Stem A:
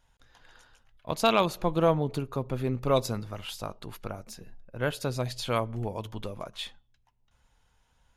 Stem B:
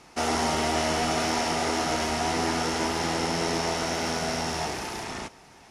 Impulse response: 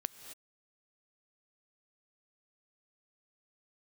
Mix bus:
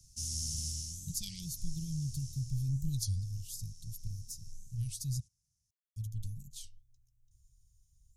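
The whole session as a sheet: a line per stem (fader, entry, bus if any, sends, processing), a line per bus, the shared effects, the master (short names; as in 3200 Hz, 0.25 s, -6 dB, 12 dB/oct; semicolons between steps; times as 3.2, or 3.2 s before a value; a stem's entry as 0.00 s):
+3.0 dB, 0.00 s, muted 5.2–5.96, no send, dry
0.68 s -0.5 dB -> 1.14 s -12.5 dB -> 2.31 s -12.5 dB -> 2.75 s -21 dB, 0.00 s, no send, dry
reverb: off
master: soft clip -8.5 dBFS, distortion -21 dB; elliptic band-stop 120–6100 Hz, stop band 70 dB; record warp 33 1/3 rpm, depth 250 cents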